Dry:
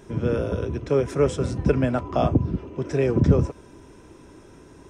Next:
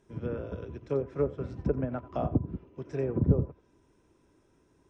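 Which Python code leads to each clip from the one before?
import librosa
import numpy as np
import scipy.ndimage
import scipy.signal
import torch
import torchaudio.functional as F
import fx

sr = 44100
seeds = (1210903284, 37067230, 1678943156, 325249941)

y = fx.env_lowpass_down(x, sr, base_hz=790.0, full_db=-15.0)
y = y + 10.0 ** (-14.5 / 20.0) * np.pad(y, (int(89 * sr / 1000.0), 0))[:len(y)]
y = fx.upward_expand(y, sr, threshold_db=-38.0, expansion=1.5)
y = y * librosa.db_to_amplitude(-5.5)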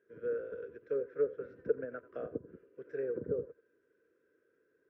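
y = fx.double_bandpass(x, sr, hz=860.0, octaves=1.7)
y = y * librosa.db_to_amplitude(3.5)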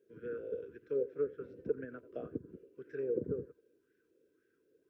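y = fx.band_shelf(x, sr, hz=1000.0, db=-14.5, octaves=2.3)
y = fx.bell_lfo(y, sr, hz=1.9, low_hz=510.0, high_hz=1800.0, db=14)
y = y * librosa.db_to_amplitude(2.0)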